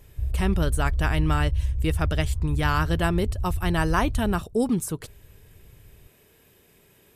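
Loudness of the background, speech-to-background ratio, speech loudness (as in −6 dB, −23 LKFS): −29.0 LKFS, 2.0 dB, −27.0 LKFS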